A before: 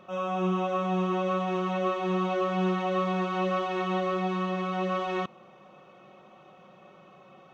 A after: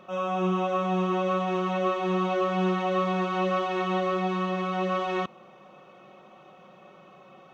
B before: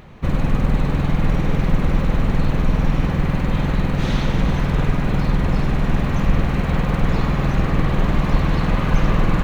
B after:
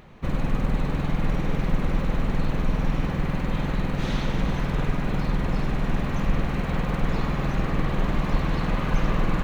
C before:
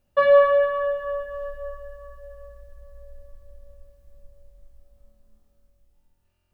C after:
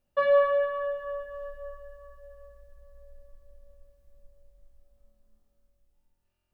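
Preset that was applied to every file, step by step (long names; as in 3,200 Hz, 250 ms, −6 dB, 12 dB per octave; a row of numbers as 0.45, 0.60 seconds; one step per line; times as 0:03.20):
parametric band 85 Hz −4.5 dB 1.4 octaves
loudness normalisation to −27 LKFS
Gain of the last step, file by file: +2.0, −5.0, −6.5 decibels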